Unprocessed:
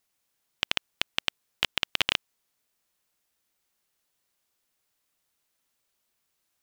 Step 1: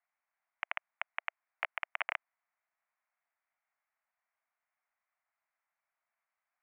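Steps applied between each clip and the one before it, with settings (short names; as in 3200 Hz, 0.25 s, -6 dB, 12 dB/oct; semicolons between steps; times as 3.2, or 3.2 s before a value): elliptic band-pass 660–2200 Hz, stop band 40 dB; gain -2 dB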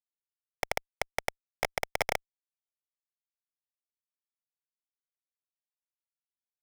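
fuzz box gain 54 dB, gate -48 dBFS; gain -6.5 dB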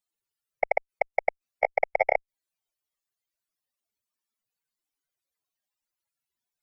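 spectral contrast raised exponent 3.3; gain +7.5 dB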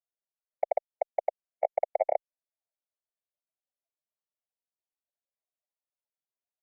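band-pass 620 Hz, Q 3.5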